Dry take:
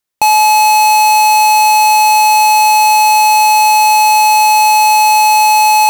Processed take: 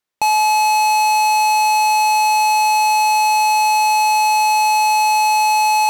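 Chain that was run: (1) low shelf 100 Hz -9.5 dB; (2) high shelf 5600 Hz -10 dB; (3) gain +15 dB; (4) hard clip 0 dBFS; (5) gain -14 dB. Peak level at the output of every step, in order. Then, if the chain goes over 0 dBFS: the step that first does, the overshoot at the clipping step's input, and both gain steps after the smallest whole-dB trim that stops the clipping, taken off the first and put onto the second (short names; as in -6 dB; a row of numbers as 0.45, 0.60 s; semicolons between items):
-5.5, -6.5, +8.5, 0.0, -14.0 dBFS; step 3, 8.5 dB; step 3 +6 dB, step 5 -5 dB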